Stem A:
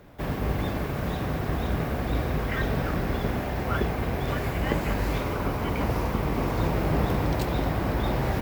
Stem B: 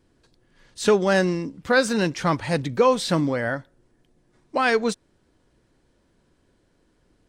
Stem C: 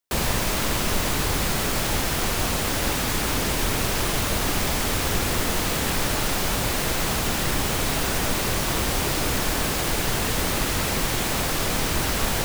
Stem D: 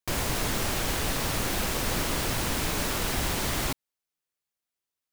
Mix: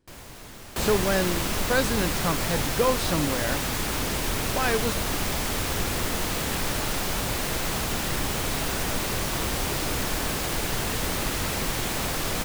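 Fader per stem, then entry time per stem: off, -5.5 dB, -3.5 dB, -15.0 dB; off, 0.00 s, 0.65 s, 0.00 s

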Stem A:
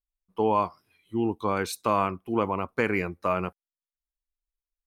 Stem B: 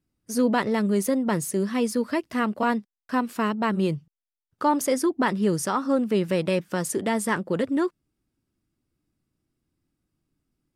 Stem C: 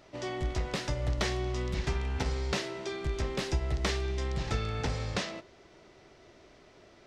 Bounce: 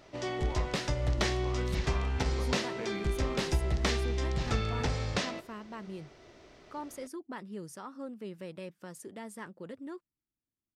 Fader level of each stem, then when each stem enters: -19.5, -19.0, +1.0 dB; 0.00, 2.10, 0.00 s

